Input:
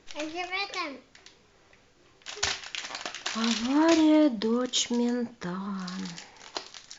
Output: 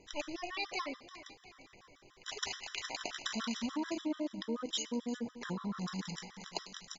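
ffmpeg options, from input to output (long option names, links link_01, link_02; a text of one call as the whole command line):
ffmpeg -i in.wav -af "acompressor=threshold=-31dB:ratio=12,aecho=1:1:350|700|1050|1400|1750:0.188|0.0942|0.0471|0.0235|0.0118,afftfilt=real='re*gt(sin(2*PI*6.9*pts/sr)*(1-2*mod(floor(b*sr/1024/1000),2)),0)':imag='im*gt(sin(2*PI*6.9*pts/sr)*(1-2*mod(floor(b*sr/1024/1000),2)),0)':win_size=1024:overlap=0.75" out.wav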